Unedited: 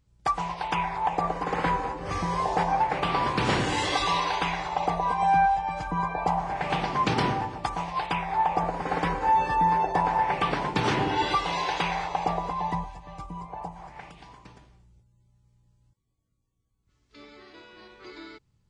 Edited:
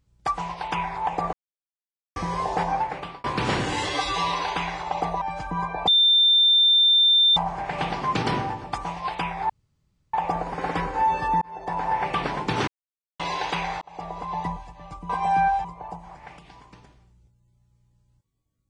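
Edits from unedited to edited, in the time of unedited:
0:01.33–0:02.16: silence
0:02.73–0:03.24: fade out
0:03.89–0:04.18: time-stretch 1.5×
0:05.07–0:05.62: move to 0:13.37
0:06.28: insert tone 3,580 Hz −14 dBFS 1.49 s
0:08.41: splice in room tone 0.64 s
0:09.69–0:10.22: fade in
0:10.95–0:11.47: silence
0:12.09–0:12.63: fade in

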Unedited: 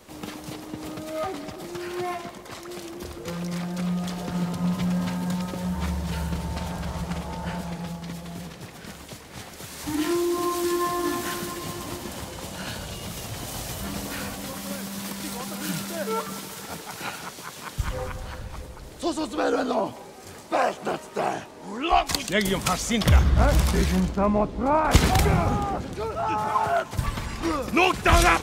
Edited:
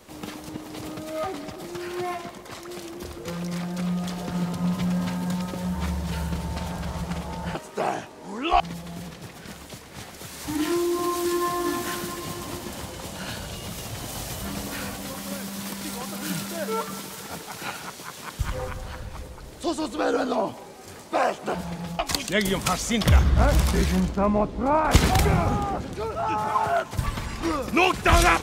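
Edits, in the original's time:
0:00.49–0:00.81: reverse
0:07.55–0:07.99: swap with 0:20.94–0:21.99

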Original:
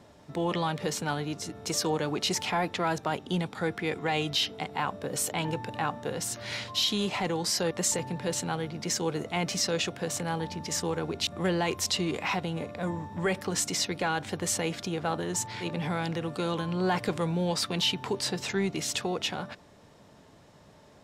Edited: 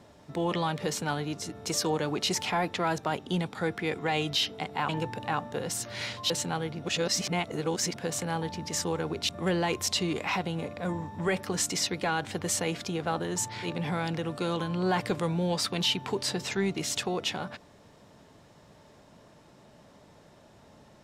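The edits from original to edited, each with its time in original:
0:04.89–0:05.40: remove
0:06.81–0:08.28: remove
0:08.80–0:09.94: reverse

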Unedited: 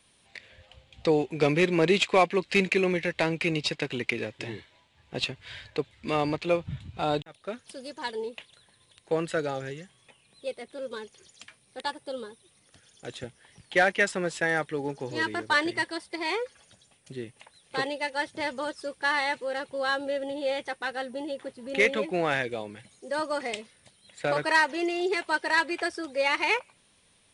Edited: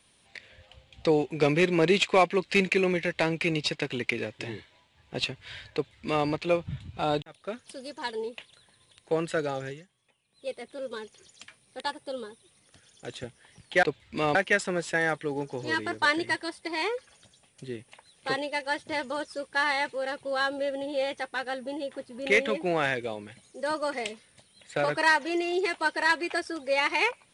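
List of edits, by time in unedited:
0:05.74–0:06.26: duplicate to 0:13.83
0:09.68–0:10.51: duck −12.5 dB, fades 0.19 s

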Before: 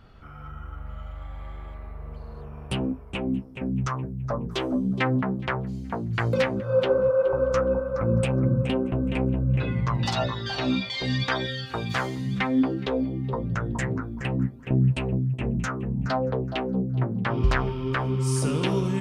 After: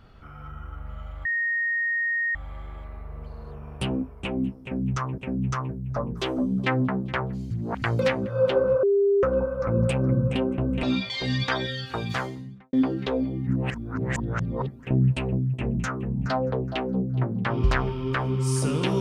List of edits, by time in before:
0:01.25: insert tone 1,860 Hz −22.5 dBFS 1.10 s
0:03.52–0:04.08: repeat, 2 plays
0:05.85–0:06.16: reverse
0:07.17–0:07.57: beep over 400 Hz −17 dBFS
0:09.17–0:10.63: remove
0:11.83–0:12.53: fade out and dull
0:13.27–0:14.48: reverse

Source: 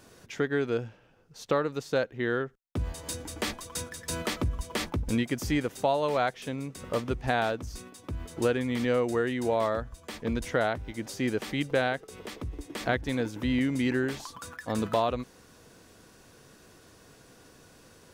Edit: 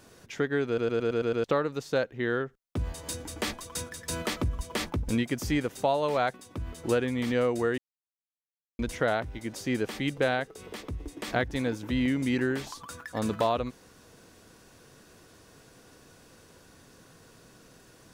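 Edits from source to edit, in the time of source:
0:00.67: stutter in place 0.11 s, 7 plays
0:06.34–0:07.87: remove
0:09.31–0:10.32: silence

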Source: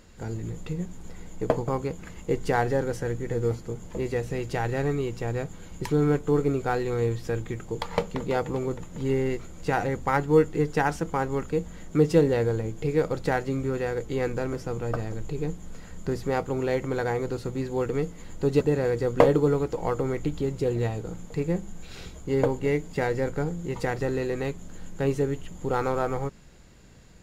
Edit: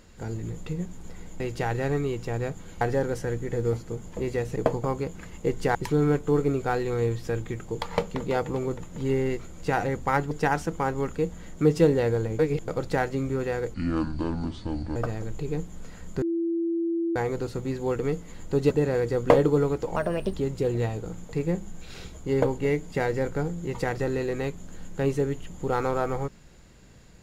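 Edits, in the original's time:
0:01.40–0:02.59: swap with 0:04.34–0:05.75
0:10.31–0:10.65: remove
0:12.73–0:13.02: reverse
0:14.08–0:14.86: play speed 64%
0:16.12–0:17.06: beep over 335 Hz −23.5 dBFS
0:19.86–0:20.35: play speed 129%

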